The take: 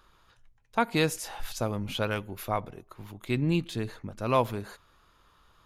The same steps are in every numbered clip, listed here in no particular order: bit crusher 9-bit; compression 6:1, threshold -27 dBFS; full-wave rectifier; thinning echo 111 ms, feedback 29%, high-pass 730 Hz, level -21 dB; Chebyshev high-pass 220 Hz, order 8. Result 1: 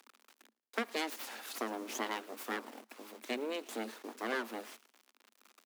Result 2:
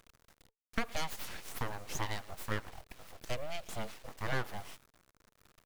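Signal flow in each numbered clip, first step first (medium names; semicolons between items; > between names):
bit crusher > compression > thinning echo > full-wave rectifier > Chebyshev high-pass; thinning echo > bit crusher > compression > Chebyshev high-pass > full-wave rectifier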